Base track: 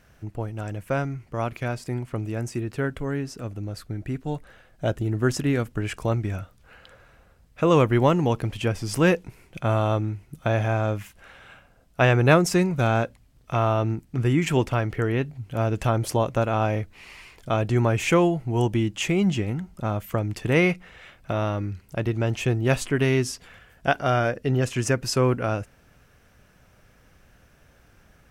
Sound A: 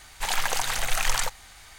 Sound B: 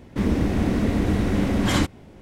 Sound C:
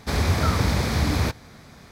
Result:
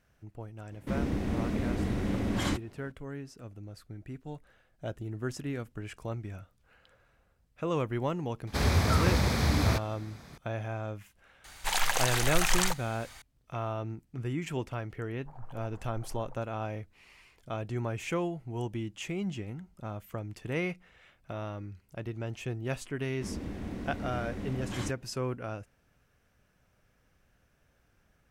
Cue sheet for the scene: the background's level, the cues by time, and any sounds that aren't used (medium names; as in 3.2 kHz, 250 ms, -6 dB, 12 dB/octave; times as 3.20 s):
base track -12.5 dB
0.71 s: add B -9.5 dB
8.47 s: add C -4 dB
11.44 s: add A -2 dB
15.05 s: add A -16 dB + Gaussian low-pass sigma 9.2 samples
23.05 s: add B -16.5 dB